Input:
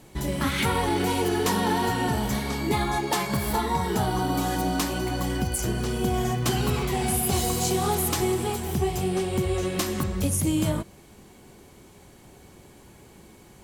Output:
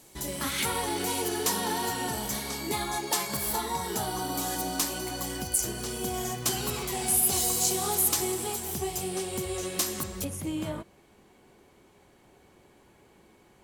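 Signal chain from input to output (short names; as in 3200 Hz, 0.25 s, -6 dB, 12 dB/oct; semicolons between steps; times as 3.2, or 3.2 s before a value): tone controls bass -7 dB, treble +10 dB, from 10.23 s treble -7 dB; gain -5.5 dB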